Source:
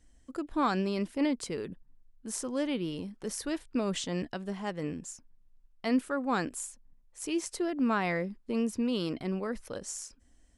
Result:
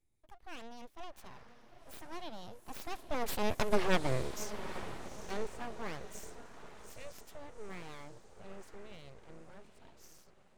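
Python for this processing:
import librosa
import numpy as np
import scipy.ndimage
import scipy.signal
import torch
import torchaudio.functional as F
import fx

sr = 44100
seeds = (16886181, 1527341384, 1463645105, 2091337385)

y = fx.doppler_pass(x, sr, speed_mps=59, closest_m=10.0, pass_at_s=3.78)
y = fx.echo_diffused(y, sr, ms=839, feedback_pct=44, wet_db=-11.0)
y = np.abs(y)
y = y * 10.0 ** (11.0 / 20.0)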